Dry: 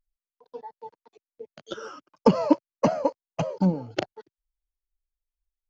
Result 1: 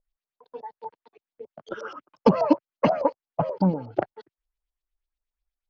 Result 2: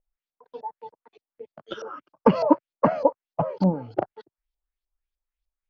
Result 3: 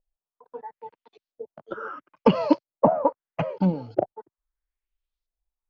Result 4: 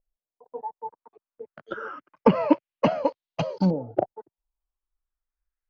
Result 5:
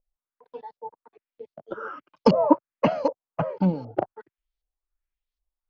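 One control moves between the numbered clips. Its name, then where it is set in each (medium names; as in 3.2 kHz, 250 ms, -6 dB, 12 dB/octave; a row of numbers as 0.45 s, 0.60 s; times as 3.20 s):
LFO low-pass, rate: 8.3 Hz, 3.3 Hz, 0.76 Hz, 0.27 Hz, 1.3 Hz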